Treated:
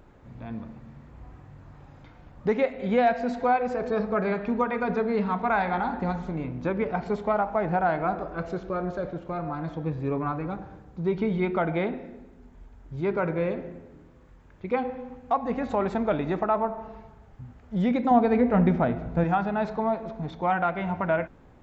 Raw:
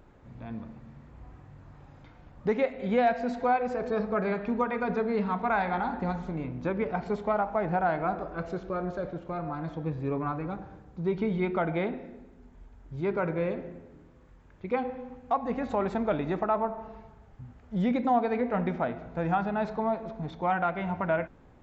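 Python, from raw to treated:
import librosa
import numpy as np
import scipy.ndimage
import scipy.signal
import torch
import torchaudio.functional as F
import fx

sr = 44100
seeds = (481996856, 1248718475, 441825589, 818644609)

y = fx.low_shelf(x, sr, hz=290.0, db=10.5, at=(18.11, 19.24))
y = y * 10.0 ** (2.5 / 20.0)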